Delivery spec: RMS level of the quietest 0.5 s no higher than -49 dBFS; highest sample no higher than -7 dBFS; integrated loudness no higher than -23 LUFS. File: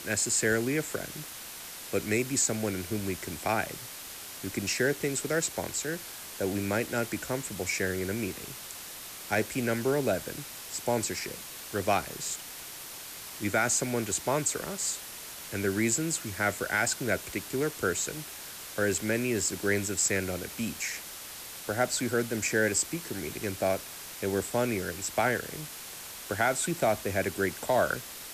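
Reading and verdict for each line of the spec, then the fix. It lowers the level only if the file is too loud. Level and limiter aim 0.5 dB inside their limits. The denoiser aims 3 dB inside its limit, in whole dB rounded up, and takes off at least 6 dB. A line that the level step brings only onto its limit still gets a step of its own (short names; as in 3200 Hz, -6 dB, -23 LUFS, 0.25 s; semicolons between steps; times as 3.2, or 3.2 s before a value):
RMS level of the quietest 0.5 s -43 dBFS: fail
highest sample -14.5 dBFS: OK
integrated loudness -30.5 LUFS: OK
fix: denoiser 9 dB, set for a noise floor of -43 dBFS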